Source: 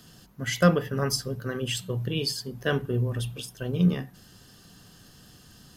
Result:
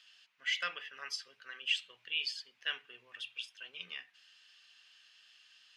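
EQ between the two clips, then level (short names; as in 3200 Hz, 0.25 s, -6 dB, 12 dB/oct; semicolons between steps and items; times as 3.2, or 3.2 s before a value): resonant high-pass 2500 Hz, resonance Q 3; tape spacing loss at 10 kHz 31 dB; high shelf 4700 Hz +7 dB; 0.0 dB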